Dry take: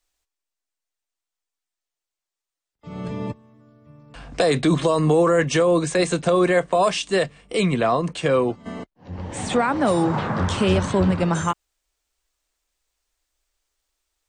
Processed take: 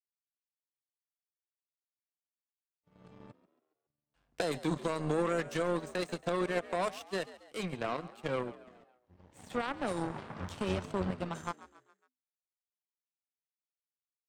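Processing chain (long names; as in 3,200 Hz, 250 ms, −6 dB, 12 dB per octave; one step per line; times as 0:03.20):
power curve on the samples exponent 2
echo with shifted repeats 138 ms, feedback 47%, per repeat +63 Hz, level −17 dB
level −8.5 dB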